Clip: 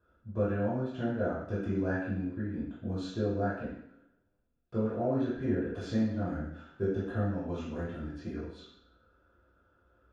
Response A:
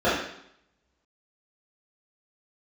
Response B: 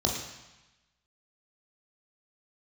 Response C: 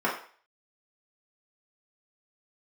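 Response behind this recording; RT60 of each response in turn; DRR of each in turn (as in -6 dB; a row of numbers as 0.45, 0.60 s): A; 0.70, 1.0, 0.45 s; -12.5, -0.5, -6.5 dB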